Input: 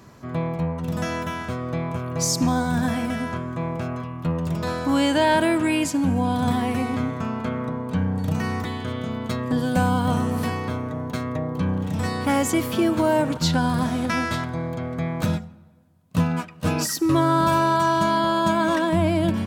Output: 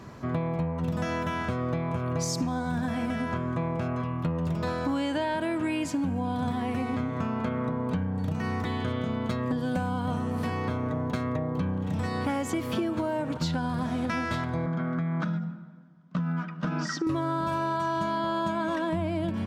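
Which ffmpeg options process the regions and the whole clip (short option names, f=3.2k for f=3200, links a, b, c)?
-filter_complex "[0:a]asettb=1/sr,asplit=3[a][b][c];[a]atrim=end=14.664[d];[b]atrim=start=14.66:end=17.07,asetpts=PTS-STARTPTS,afade=t=in:d=0.004:c=qsin,afade=t=out:st=2.406:d=0.004:c=qsin,highpass=f=170:w=0.5412,highpass=f=170:w=1.3066,equalizer=f=170:t=q:w=4:g=10,equalizer=f=470:t=q:w=4:g=-9,equalizer=f=770:t=q:w=4:g=-4,equalizer=f=1.4k:t=q:w=4:g=9,equalizer=f=2.6k:t=q:w=4:g=-7,equalizer=f=4.2k:t=q:w=4:g=-7,lowpass=f=5.3k:w=0.5412,lowpass=f=5.3k:w=1.3066,acompressor=threshold=-25dB:ratio=6:attack=3.2:release=140:knee=1:detection=peak[e];[c]atrim=start=17.066[f];[d][e]acrossfade=d=0.004:c1=hsin:c2=qsin[g];[g][f]acrossfade=d=0.004:c1=qsin:c2=hsin,lowpass=f=3.7k:p=1,acompressor=threshold=-29dB:ratio=12,volume=3.5dB"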